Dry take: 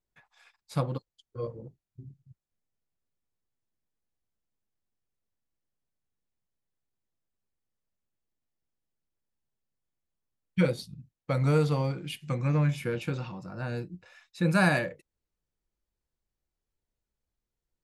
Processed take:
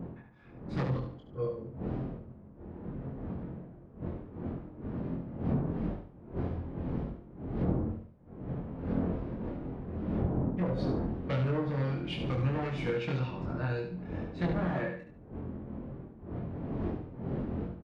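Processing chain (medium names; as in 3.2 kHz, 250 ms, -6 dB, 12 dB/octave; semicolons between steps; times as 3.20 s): one-sided wavefolder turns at -23 dBFS; wind noise 230 Hz -33 dBFS; level-controlled noise filter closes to 1.5 kHz, open at -22.5 dBFS; hum notches 50/100/150 Hz; low-pass that closes with the level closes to 1.1 kHz, closed at -21 dBFS; high-pass 46 Hz 6 dB/octave; compression, threshold -29 dBFS, peak gain reduction 10.5 dB; doubling 23 ms -2 dB; on a send: feedback delay 72 ms, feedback 34%, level -6.5 dB; on the sum: trim -1 dB; Vorbis 64 kbps 48 kHz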